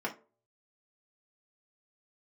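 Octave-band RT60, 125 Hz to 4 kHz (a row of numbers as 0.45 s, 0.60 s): 0.65 s, 0.35 s, 0.45 s, 0.30 s, 0.25 s, 0.15 s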